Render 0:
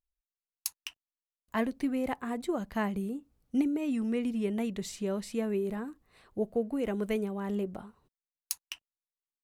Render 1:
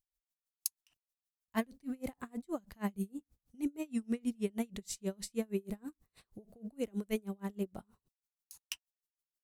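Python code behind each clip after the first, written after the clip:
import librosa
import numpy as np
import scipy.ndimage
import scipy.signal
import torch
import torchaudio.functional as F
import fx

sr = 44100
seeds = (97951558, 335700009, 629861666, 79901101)

y = fx.bass_treble(x, sr, bass_db=6, treble_db=10)
y = y * 10.0 ** (-33 * (0.5 - 0.5 * np.cos(2.0 * np.pi * 6.3 * np.arange(len(y)) / sr)) / 20.0)
y = y * librosa.db_to_amplitude(-2.5)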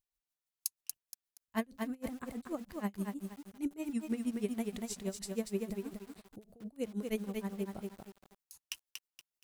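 y = fx.echo_crushed(x, sr, ms=236, feedback_pct=35, bits=9, wet_db=-4.0)
y = y * librosa.db_to_amplitude(-1.0)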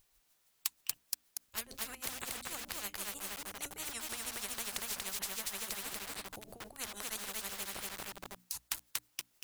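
y = fx.hum_notches(x, sr, base_hz=60, count=5)
y = fx.spectral_comp(y, sr, ratio=10.0)
y = y * librosa.db_to_amplitude(3.5)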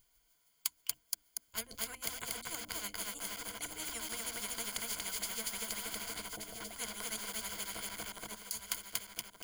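y = fx.ripple_eq(x, sr, per_octave=1.8, db=11)
y = fx.echo_feedback(y, sr, ms=1178, feedback_pct=22, wet_db=-8.0)
y = y * librosa.db_to_amplitude(-1.5)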